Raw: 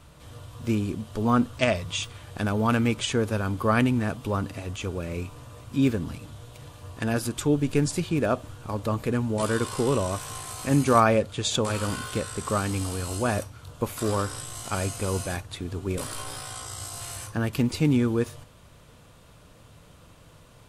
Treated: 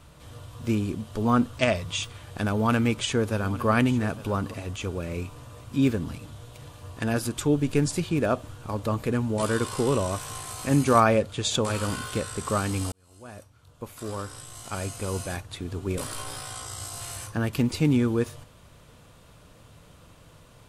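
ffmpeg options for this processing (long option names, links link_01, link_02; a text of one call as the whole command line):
ffmpeg -i in.wav -filter_complex "[0:a]asettb=1/sr,asplit=3[link_01][link_02][link_03];[link_01]atrim=end=2.504[link_04];[link_02]atrim=start=2.5:end=4.54,asetpts=PTS-STARTPTS,afade=type=in:duration=0.004:curve=qsin,afade=type=out:start_time=2.036:duration=0.004:curve=qsin,aecho=1:1:855:0.15,atrim=end_sample=89964[link_05];[link_03]atrim=start=4.536[link_06];[link_04][link_05]acrossfade=duration=0.004:curve1=hsin:curve2=qsin[link_07];[link_07][link_06]acrossfade=duration=0.004:curve1=qsin:curve2=hsin,asplit=2[link_08][link_09];[link_08]atrim=end=12.92,asetpts=PTS-STARTPTS,afade=type=out:start_time=12.916:duration=0.004:curve=hsin[link_10];[link_09]atrim=start=12.92,asetpts=PTS-STARTPTS,afade=type=in:duration=2.94[link_11];[link_10][link_11]concat=n=2:v=0:a=1" out.wav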